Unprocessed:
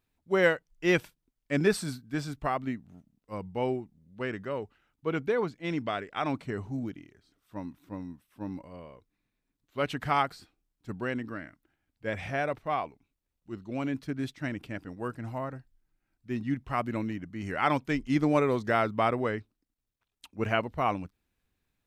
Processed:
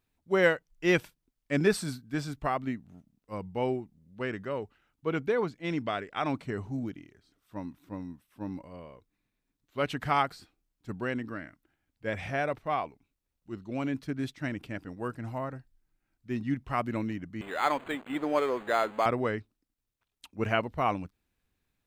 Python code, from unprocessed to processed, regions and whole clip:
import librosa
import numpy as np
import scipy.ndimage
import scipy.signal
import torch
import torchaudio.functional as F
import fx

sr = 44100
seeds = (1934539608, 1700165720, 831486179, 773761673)

y = fx.chain(x, sr, fx.zero_step(step_db=-36.5),
    fx.highpass(hz=440.0, slope=12),
    fx.resample_linear(factor=8), at=(17.41, 19.06))